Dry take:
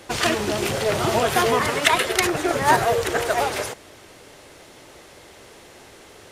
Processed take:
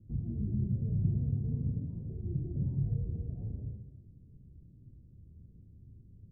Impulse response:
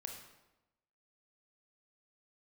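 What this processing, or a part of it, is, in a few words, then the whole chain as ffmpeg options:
club heard from the street: -filter_complex "[0:a]alimiter=limit=-12.5dB:level=0:latency=1:release=58,lowpass=f=170:w=0.5412,lowpass=f=170:w=1.3066[a];[1:a]atrim=start_sample=2205[b];[a][b]afir=irnorm=-1:irlink=0,volume=6dB"

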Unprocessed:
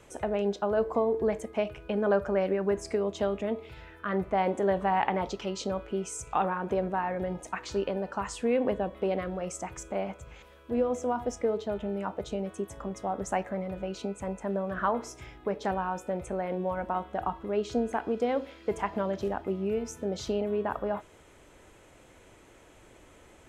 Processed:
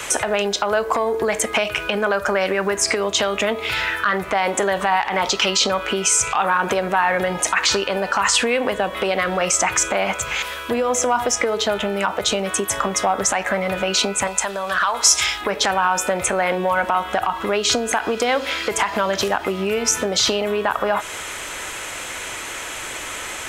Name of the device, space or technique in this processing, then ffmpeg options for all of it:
mastering chain: -filter_complex "[0:a]equalizer=f=1.3k:t=o:w=1.4:g=3,acrossover=split=83|5200[a][b][c];[a]acompressor=threshold=-57dB:ratio=4[d];[b]acompressor=threshold=-30dB:ratio=4[e];[c]acompressor=threshold=-50dB:ratio=4[f];[d][e][f]amix=inputs=3:normalize=0,acompressor=threshold=-38dB:ratio=2,asoftclip=type=tanh:threshold=-23.5dB,tiltshelf=f=870:g=-10,alimiter=level_in=28.5dB:limit=-1dB:release=50:level=0:latency=1,asettb=1/sr,asplit=3[g][h][i];[g]atrim=end=14.274[j];[h]atrim=start=14.27:end=15.41,asetpts=PTS-STARTPTS,afade=t=in:d=0.004:c=qsin,afade=t=out:st=1.136:d=0.004:c=qsin,equalizer=f=125:t=o:w=1:g=-8,equalizer=f=250:t=o:w=1:g=-10,equalizer=f=500:t=o:w=1:g=-4,equalizer=f=2k:t=o:w=1:g=-4,equalizer=f=4k:t=o:w=1:g=6,equalizer=f=8k:t=o:w=1:g=5[k];[i]atrim=start=15.406[l];[j][k]acrossfade=d=0.004:c1=hsin:c2=qsin[m];[m][l]acrossfade=d=0.004:c1=qsin:c2=hsin,volume=-6dB"

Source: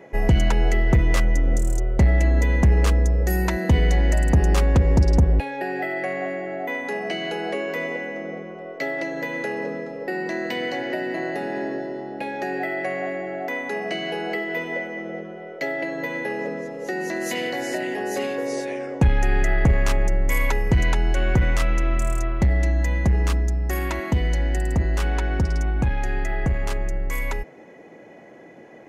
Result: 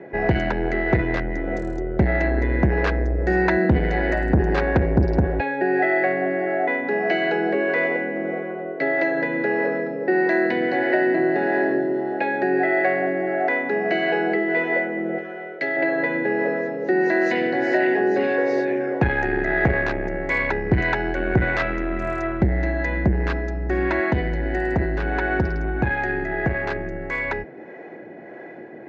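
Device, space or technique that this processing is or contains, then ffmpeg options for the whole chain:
guitar amplifier with harmonic tremolo: -filter_complex "[0:a]acrossover=split=410[a][b];[a]aeval=exprs='val(0)*(1-0.5/2+0.5/2*cos(2*PI*1.6*n/s))':c=same[c];[b]aeval=exprs='val(0)*(1-0.5/2-0.5/2*cos(2*PI*1.6*n/s))':c=same[d];[c][d]amix=inputs=2:normalize=0,asoftclip=type=tanh:threshold=-16.5dB,highpass=85,equalizer=f=360:t=q:w=4:g=7,equalizer=f=710:t=q:w=4:g=4,equalizer=f=1.2k:t=q:w=4:g=-4,equalizer=f=1.6k:t=q:w=4:g=9,equalizer=f=3.1k:t=q:w=4:g=-8,lowpass=f=3.8k:w=0.5412,lowpass=f=3.8k:w=1.3066,asettb=1/sr,asplit=3[e][f][g];[e]atrim=end=15.184[h];[f]atrim=start=15.18:end=15.77,asetpts=PTS-STARTPTS,afade=t=in:d=0.004:c=qsin,afade=t=out:st=0.586:d=0.004:c=qsin,tiltshelf=f=1.4k:g=-6.5[i];[g]atrim=start=15.766[j];[h][i]acrossfade=d=0.004:c1=hsin:c2=qsin[k];[k][j]acrossfade=d=0.004:c1=qsin:c2=hsin,volume=6dB"

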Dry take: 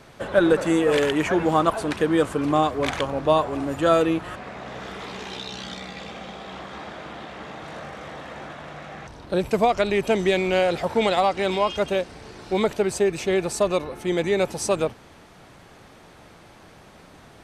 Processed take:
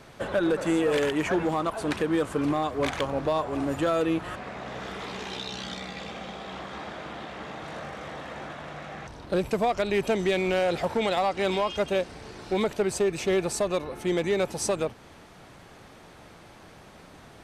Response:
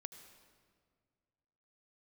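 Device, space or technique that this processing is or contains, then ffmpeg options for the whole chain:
limiter into clipper: -af "alimiter=limit=-14dB:level=0:latency=1:release=235,asoftclip=type=hard:threshold=-17dB,volume=-1dB"

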